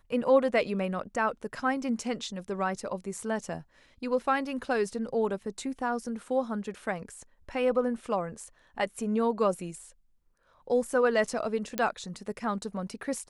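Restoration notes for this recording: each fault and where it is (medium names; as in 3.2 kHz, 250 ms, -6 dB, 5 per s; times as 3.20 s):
11.78 s: pop -13 dBFS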